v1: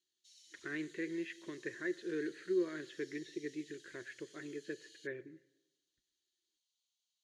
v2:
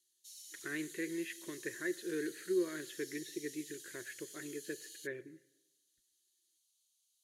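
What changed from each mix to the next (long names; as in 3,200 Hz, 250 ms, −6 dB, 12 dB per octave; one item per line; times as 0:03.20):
master: remove high-frequency loss of the air 140 metres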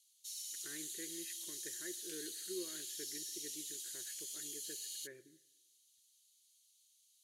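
speech −11.5 dB
background +7.0 dB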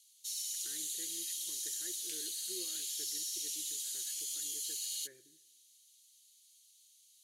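speech −5.5 dB
background +6.5 dB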